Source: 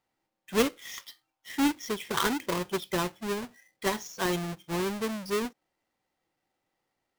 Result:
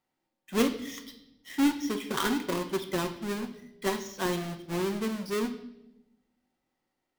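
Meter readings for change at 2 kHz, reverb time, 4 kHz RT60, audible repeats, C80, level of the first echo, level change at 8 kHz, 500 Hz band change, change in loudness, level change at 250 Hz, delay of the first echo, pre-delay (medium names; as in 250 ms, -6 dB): -2.0 dB, 0.90 s, 0.80 s, no echo, 14.5 dB, no echo, -2.5 dB, -0.5 dB, -0.5 dB, +2.0 dB, no echo, 3 ms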